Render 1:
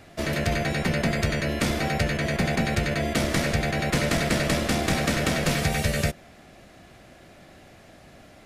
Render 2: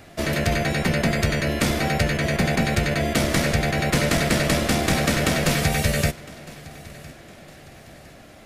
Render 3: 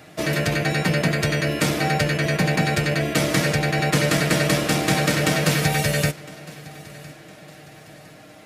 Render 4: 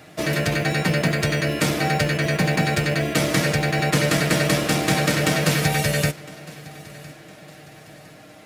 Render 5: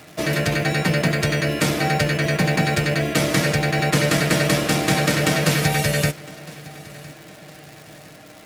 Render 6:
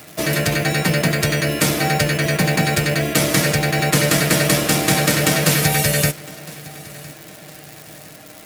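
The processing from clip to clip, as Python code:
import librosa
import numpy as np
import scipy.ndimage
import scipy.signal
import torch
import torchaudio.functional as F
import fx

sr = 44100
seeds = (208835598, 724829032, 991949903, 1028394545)

y1 = fx.high_shelf(x, sr, hz=12000.0, db=6.0)
y1 = fx.echo_feedback(y1, sr, ms=1009, feedback_pct=43, wet_db=-21)
y1 = F.gain(torch.from_numpy(y1), 3.0).numpy()
y2 = scipy.signal.sosfilt(scipy.signal.butter(2, 100.0, 'highpass', fs=sr, output='sos'), y1)
y2 = y2 + 0.53 * np.pad(y2, (int(6.5 * sr / 1000.0), 0))[:len(y2)]
y3 = fx.quant_float(y2, sr, bits=4)
y4 = fx.dmg_crackle(y3, sr, seeds[0], per_s=250.0, level_db=-34.0)
y4 = F.gain(torch.from_numpy(y4), 1.0).numpy()
y5 = fx.high_shelf(y4, sr, hz=8100.0, db=11.5)
y5 = F.gain(torch.from_numpy(y5), 1.5).numpy()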